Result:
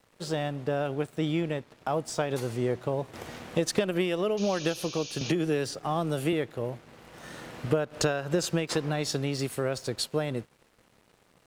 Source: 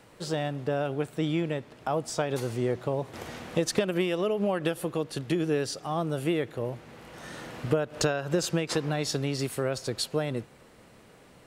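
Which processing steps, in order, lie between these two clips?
dead-zone distortion −54 dBFS
0:04.37–0:05.32: sound drawn into the spectrogram noise 2,300–6,800 Hz −42 dBFS
0:05.21–0:06.33: multiband upward and downward compressor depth 70%

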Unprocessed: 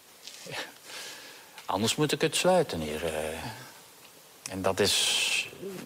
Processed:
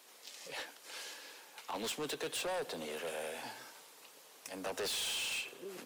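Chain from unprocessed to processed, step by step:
high-pass filter 320 Hz 12 dB per octave
soft clipping −29.5 dBFS, distortion −7 dB
level −5 dB

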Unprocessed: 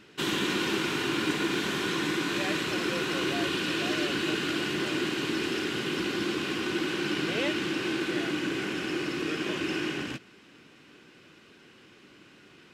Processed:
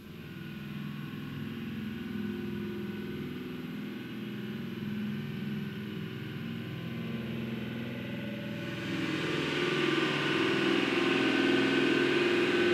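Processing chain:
gain on a spectral selection 0:05.19–0:07.60, 240–11,000 Hz −17 dB
extreme stretch with random phases 7.5×, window 0.25 s, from 0:06.40
on a send: echo with a time of its own for lows and highs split 2,000 Hz, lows 376 ms, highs 564 ms, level −7 dB
on the sum: spring reverb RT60 3.6 s, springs 48 ms, chirp 55 ms, DRR −6.5 dB
level −5.5 dB

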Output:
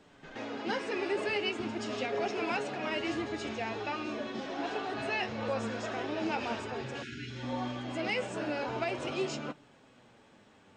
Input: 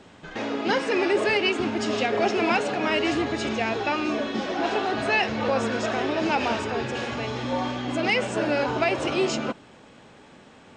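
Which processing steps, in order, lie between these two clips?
flanger 0.42 Hz, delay 6.6 ms, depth 3.7 ms, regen +56%
time-frequency box erased 0:07.03–0:07.43, 410–1,300 Hz
backwards echo 129 ms −14 dB
level −6 dB

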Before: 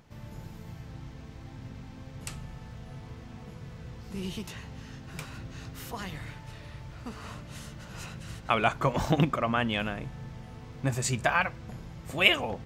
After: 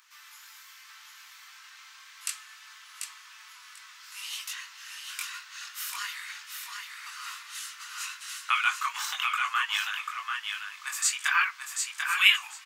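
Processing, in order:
Butterworth high-pass 1,100 Hz 48 dB per octave
high-shelf EQ 4,200 Hz +7 dB
in parallel at −2.5 dB: downward compressor, threshold −37 dBFS, peak gain reduction 22 dB
on the sum: multi-voice chorus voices 6, 0.37 Hz, delay 22 ms, depth 2.5 ms
repeating echo 741 ms, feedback 18%, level −5 dB
level +3.5 dB

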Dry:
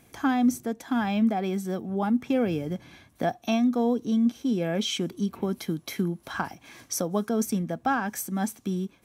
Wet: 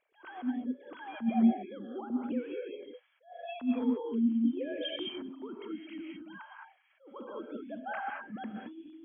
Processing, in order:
three sine waves on the formant tracks
sample-and-hold tremolo
reverb whose tail is shaped and stops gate 240 ms rising, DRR −0.5 dB
level that may rise only so fast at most 200 dB per second
level −6 dB

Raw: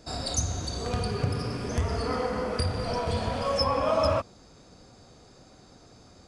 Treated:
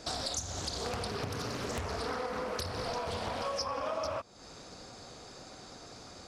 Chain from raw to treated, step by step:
low-shelf EQ 360 Hz −9.5 dB
downward compressor 6 to 1, threshold −41 dBFS, peak gain reduction 17 dB
highs frequency-modulated by the lows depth 0.83 ms
level +7.5 dB

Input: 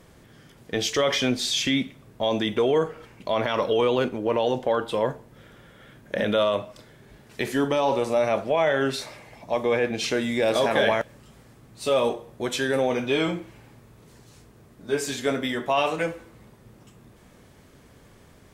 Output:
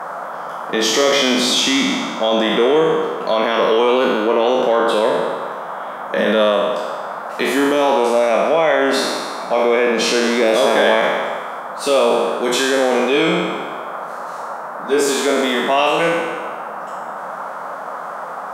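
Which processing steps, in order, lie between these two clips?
peak hold with a decay on every bin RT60 1.42 s
noise in a band 530–1,400 Hz −35 dBFS
in parallel at +3 dB: brickwall limiter −15 dBFS, peak gain reduction 9 dB
on the sum: elliptic high-pass filter 170 Hz, stop band 40 dB

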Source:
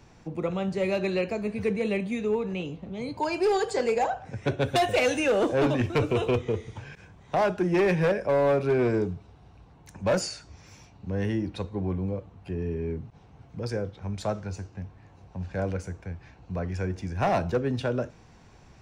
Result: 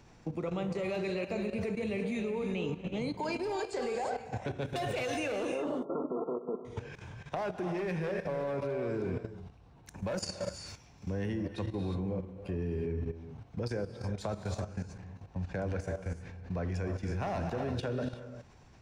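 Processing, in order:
downward compressor 4 to 1, threshold −30 dBFS, peak gain reduction 8.5 dB
0:05.47–0:06.65: linear-phase brick-wall band-pass 160–1,400 Hz
reverb whose tail is shaped and stops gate 390 ms rising, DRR 6 dB
output level in coarse steps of 12 dB
level +2.5 dB

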